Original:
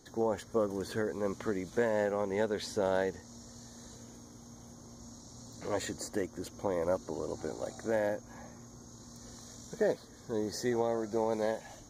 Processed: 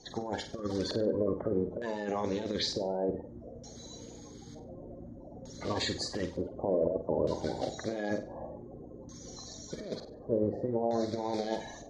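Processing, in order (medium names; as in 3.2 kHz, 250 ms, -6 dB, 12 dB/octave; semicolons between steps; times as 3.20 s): coarse spectral quantiser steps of 30 dB; compressor with a negative ratio -34 dBFS, ratio -0.5; LFO low-pass square 0.55 Hz 620–4400 Hz; flutter echo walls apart 8.2 m, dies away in 0.33 s; trim +1.5 dB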